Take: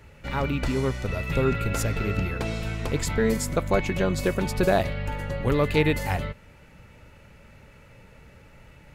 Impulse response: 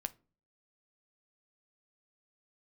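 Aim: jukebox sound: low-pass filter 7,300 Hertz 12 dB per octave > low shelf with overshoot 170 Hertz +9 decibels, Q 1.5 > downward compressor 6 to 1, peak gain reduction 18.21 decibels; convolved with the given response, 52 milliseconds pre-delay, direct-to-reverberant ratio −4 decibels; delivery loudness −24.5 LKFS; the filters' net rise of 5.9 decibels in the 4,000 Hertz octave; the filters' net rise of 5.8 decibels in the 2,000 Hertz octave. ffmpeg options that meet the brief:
-filter_complex "[0:a]equalizer=frequency=2000:width_type=o:gain=5.5,equalizer=frequency=4000:width_type=o:gain=6,asplit=2[link_01][link_02];[1:a]atrim=start_sample=2205,adelay=52[link_03];[link_02][link_03]afir=irnorm=-1:irlink=0,volume=5dB[link_04];[link_01][link_04]amix=inputs=2:normalize=0,lowpass=7300,lowshelf=frequency=170:width_type=q:width=1.5:gain=9,acompressor=threshold=-25dB:ratio=6,volume=5dB"

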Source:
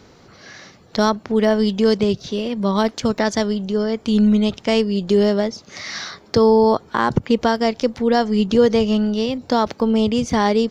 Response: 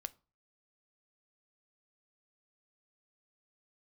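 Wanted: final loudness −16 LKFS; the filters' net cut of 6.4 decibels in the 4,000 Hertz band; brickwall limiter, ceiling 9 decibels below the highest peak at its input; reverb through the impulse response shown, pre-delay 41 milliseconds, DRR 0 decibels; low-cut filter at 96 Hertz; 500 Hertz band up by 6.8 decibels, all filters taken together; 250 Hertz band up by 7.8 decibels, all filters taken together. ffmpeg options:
-filter_complex "[0:a]highpass=96,equalizer=frequency=250:width_type=o:gain=8.5,equalizer=frequency=500:width_type=o:gain=5.5,equalizer=frequency=4000:width_type=o:gain=-9,alimiter=limit=-5.5dB:level=0:latency=1,asplit=2[link_01][link_02];[1:a]atrim=start_sample=2205,adelay=41[link_03];[link_02][link_03]afir=irnorm=-1:irlink=0,volume=3dB[link_04];[link_01][link_04]amix=inputs=2:normalize=0,volume=-3.5dB"

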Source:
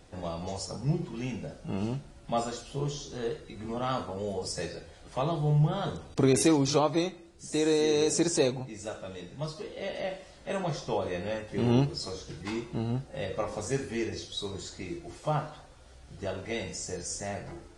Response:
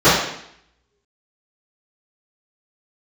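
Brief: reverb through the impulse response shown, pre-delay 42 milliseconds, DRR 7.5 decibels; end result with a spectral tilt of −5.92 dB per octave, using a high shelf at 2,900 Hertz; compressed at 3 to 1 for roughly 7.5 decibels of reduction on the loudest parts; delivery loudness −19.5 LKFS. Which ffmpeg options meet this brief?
-filter_complex "[0:a]highshelf=frequency=2900:gain=-4.5,acompressor=threshold=-29dB:ratio=3,asplit=2[link_01][link_02];[1:a]atrim=start_sample=2205,adelay=42[link_03];[link_02][link_03]afir=irnorm=-1:irlink=0,volume=-35.5dB[link_04];[link_01][link_04]amix=inputs=2:normalize=0,volume=14.5dB"

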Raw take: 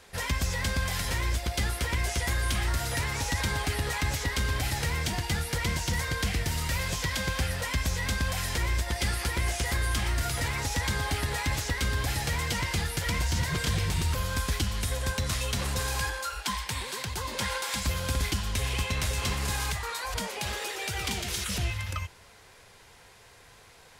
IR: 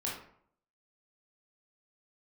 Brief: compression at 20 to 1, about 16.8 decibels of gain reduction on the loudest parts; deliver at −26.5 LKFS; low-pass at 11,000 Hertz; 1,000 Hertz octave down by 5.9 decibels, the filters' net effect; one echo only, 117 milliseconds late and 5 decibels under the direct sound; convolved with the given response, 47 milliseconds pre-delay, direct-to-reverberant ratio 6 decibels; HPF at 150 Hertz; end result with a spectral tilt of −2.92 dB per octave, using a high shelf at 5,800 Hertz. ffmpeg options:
-filter_complex "[0:a]highpass=150,lowpass=11000,equalizer=frequency=1000:width_type=o:gain=-7.5,highshelf=frequency=5800:gain=7,acompressor=threshold=-44dB:ratio=20,aecho=1:1:117:0.562,asplit=2[link_01][link_02];[1:a]atrim=start_sample=2205,adelay=47[link_03];[link_02][link_03]afir=irnorm=-1:irlink=0,volume=-9.5dB[link_04];[link_01][link_04]amix=inputs=2:normalize=0,volume=17.5dB"

